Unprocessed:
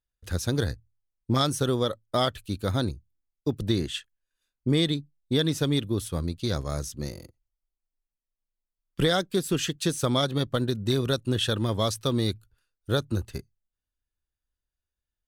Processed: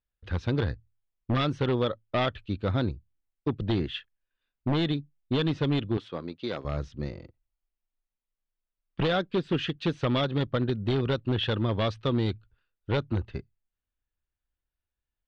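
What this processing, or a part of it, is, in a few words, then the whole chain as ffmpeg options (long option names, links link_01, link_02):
synthesiser wavefolder: -filter_complex "[0:a]aeval=exprs='0.119*(abs(mod(val(0)/0.119+3,4)-2)-1)':channel_layout=same,lowpass=frequency=3400:width=0.5412,lowpass=frequency=3400:width=1.3066,asettb=1/sr,asplit=3[link_01][link_02][link_03];[link_01]atrim=end=5.974[link_04];[link_02]atrim=start=5.97:end=6.65,asetpts=PTS-STARTPTS,afade=type=in:duration=0.004:curve=qsin,afade=type=out:start_time=0.676:duration=0.004:curve=qsin,highpass=280[link_05];[link_03]atrim=start=6.646[link_06];[link_04][link_05]acrossfade=duration=0.004:curve1=hsin:curve2=qsin[link_07];[link_07][link_06]acrossfade=duration=0.004:curve1=qsin:curve2=hsin"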